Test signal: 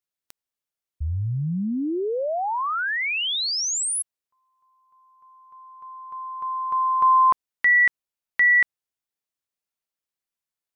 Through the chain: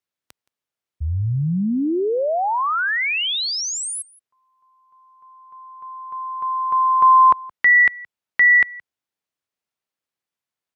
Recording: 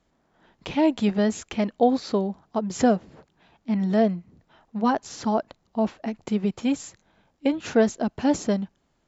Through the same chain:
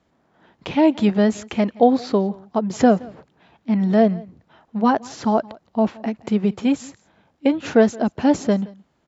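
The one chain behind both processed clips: HPF 69 Hz 12 dB/oct; high shelf 5800 Hz -9.5 dB; on a send: echo 0.171 s -23 dB; on the sum: gain +5 dB

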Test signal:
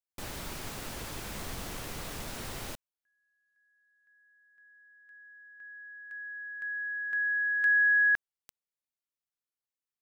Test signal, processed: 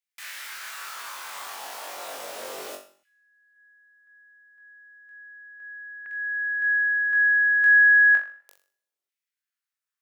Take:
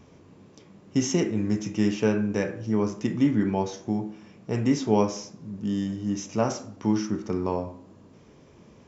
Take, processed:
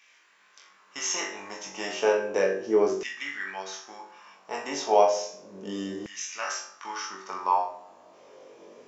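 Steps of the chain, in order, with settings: flutter echo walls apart 3.6 m, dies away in 0.37 s; Schroeder reverb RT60 0.69 s, combs from 32 ms, DRR 17 dB; LFO high-pass saw down 0.33 Hz 370–2100 Hz

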